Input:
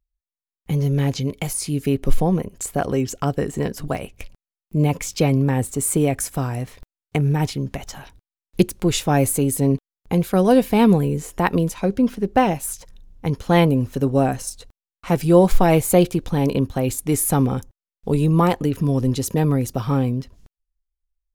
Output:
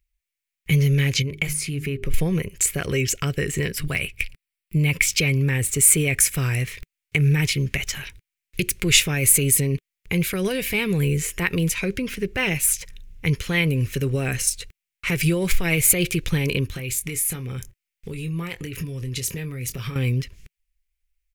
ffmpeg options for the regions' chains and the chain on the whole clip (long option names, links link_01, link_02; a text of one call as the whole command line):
ffmpeg -i in.wav -filter_complex "[0:a]asettb=1/sr,asplit=3[link_01][link_02][link_03];[link_01]atrim=end=1.224[link_04];[link_02]atrim=start=1.22:end=2.14,asetpts=PTS-STARTPTS,afade=type=in:duration=0.004:curve=qsin,afade=type=out:start_time=0.916:duration=0.004:curve=qsin,highshelf=frequency=2300:gain=-10,bandreject=frequency=50:width_type=h:width=6,bandreject=frequency=100:width_type=h:width=6,bandreject=frequency=150:width_type=h:width=6,bandreject=frequency=200:width_type=h:width=6,bandreject=frequency=250:width_type=h:width=6,bandreject=frequency=300:width_type=h:width=6,bandreject=frequency=350:width_type=h:width=6,bandreject=frequency=400:width_type=h:width=6,acompressor=threshold=-25dB:ratio=2.5:attack=3.2:release=140:knee=1:detection=peak[link_05];[link_03]atrim=start=2.136[link_06];[link_04][link_05]acrossfade=duration=0.004:curve1=hsin:curve2=qsin[link_07];[link_07][link_06]acrossfade=duration=0.004:curve1=qsin:curve2=hsin,asettb=1/sr,asplit=3[link_08][link_09][link_10];[link_08]atrim=end=3.724[link_11];[link_09]atrim=start=3.72:end=5.08,asetpts=PTS-STARTPTS,afade=type=in:duration=0.004:curve=qsin,afade=type=out:start_time=1.356:duration=0.004:curve=qsin,equalizer=frequency=440:width=1.2:gain=-3.5,bandreject=frequency=6500:width=5.3[link_12];[link_10]atrim=start=5.076[link_13];[link_11][link_12]acrossfade=duration=0.004:curve1=hsin:curve2=qsin[link_14];[link_14][link_13]acrossfade=duration=0.004:curve1=qsin:curve2=hsin,asettb=1/sr,asplit=3[link_15][link_16][link_17];[link_15]atrim=end=16.674[link_18];[link_16]atrim=start=16.67:end=19.96,asetpts=PTS-STARTPTS,afade=type=in:duration=0.004:curve=qsin,afade=type=out:start_time=3.286:duration=0.004:curve=qsin,acompressor=threshold=-29dB:ratio=6:attack=3.2:release=140:knee=1:detection=peak,asplit=2[link_19][link_20];[link_20]adelay=24,volume=-9.5dB[link_21];[link_19][link_21]amix=inputs=2:normalize=0,atrim=end_sample=145089[link_22];[link_17]atrim=start=19.956[link_23];[link_18][link_22]acrossfade=duration=0.004:curve1=hsin:curve2=qsin[link_24];[link_24][link_23]acrossfade=duration=0.004:curve1=qsin:curve2=hsin,highshelf=frequency=2900:width_type=q:width=1.5:gain=-6.5,alimiter=limit=-14dB:level=0:latency=1:release=76,firequalizer=gain_entry='entry(160,0);entry(230,-11);entry(390,-2);entry(760,-16);entry(1200,-5);entry(2200,12)':delay=0.05:min_phase=1,volume=3.5dB" out.wav